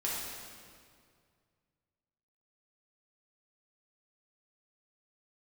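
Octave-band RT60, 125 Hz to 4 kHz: 2.9 s, 2.3 s, 2.2 s, 2.0 s, 1.8 s, 1.7 s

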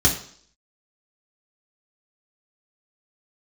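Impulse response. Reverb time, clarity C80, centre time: 0.55 s, 12.5 dB, 20 ms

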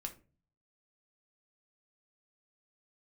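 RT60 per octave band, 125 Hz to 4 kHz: 0.80 s, 0.60 s, 0.40 s, 0.30 s, 0.30 s, 0.20 s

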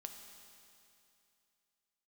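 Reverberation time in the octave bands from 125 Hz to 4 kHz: 2.7 s, 2.7 s, 2.7 s, 2.7 s, 2.7 s, 2.7 s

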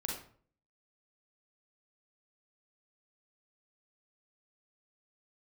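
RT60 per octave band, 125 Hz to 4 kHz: 0.65 s, 0.60 s, 0.55 s, 0.50 s, 0.40 s, 0.35 s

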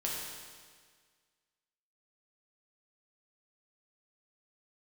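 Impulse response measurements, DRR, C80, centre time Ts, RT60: -4.5 dB, 2.0 dB, 95 ms, 1.7 s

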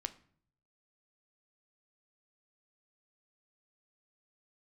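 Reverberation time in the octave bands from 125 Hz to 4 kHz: 1.0 s, 0.70 s, 0.60 s, 0.50 s, 0.50 s, 0.40 s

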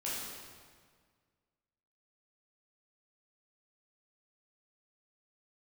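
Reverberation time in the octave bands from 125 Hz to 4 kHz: 2.1 s, 1.9 s, 1.7 s, 1.7 s, 1.6 s, 1.4 s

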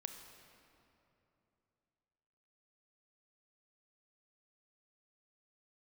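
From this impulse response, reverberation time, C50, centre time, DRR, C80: 3.0 s, 6.5 dB, 46 ms, 5.5 dB, 7.5 dB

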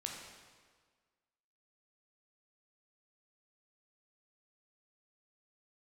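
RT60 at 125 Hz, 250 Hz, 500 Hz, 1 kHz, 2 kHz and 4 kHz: 1.5 s, 1.6 s, 1.6 s, 1.6 s, 1.4 s, 1.3 s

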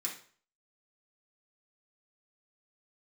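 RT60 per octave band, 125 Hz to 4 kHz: 0.50 s, 0.40 s, 0.45 s, 0.45 s, 0.45 s, 0.40 s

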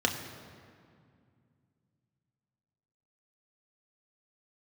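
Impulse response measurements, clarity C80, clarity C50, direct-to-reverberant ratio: 8.5 dB, 7.5 dB, 2.0 dB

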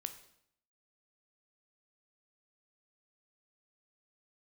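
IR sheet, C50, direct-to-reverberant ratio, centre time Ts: 11.5 dB, 8.0 dB, 9 ms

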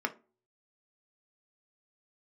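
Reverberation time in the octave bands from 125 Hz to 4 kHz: 0.60 s, 0.40 s, 0.45 s, 0.30 s, 0.25 s, 0.20 s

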